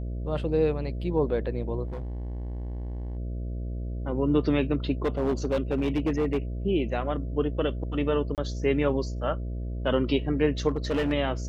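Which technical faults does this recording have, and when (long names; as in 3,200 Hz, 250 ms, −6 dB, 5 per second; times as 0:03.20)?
mains buzz 60 Hz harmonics 11 −32 dBFS
0:01.86–0:03.17: clipping −31 dBFS
0:05.05–0:06.38: clipping −20.5 dBFS
0:08.35–0:08.38: drop-out 28 ms
0:10.68–0:11.13: clipping −22 dBFS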